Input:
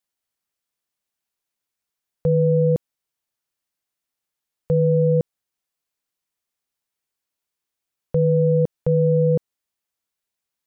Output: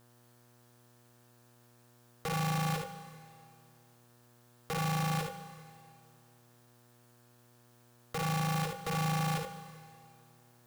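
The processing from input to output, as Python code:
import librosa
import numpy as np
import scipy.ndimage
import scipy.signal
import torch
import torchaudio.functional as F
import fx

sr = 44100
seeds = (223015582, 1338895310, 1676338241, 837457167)

y = fx.peak_eq(x, sr, hz=570.0, db=-8.5, octaves=0.96)
y = fx.notch(y, sr, hz=510.0, q=12.0)
y = fx.over_compress(y, sr, threshold_db=-34.0, ratio=-1.0)
y = (np.mod(10.0 ** (30.5 / 20.0) * y + 1.0, 2.0) - 1.0) / 10.0 ** (30.5 / 20.0)
y = fx.room_early_taps(y, sr, ms=(57, 76), db=(-6.5, -7.5))
y = fx.rev_plate(y, sr, seeds[0], rt60_s=2.2, hf_ratio=1.0, predelay_ms=0, drr_db=10.5)
y = fx.dmg_buzz(y, sr, base_hz=120.0, harmonics=15, level_db=-64.0, tilt_db=-5, odd_only=False)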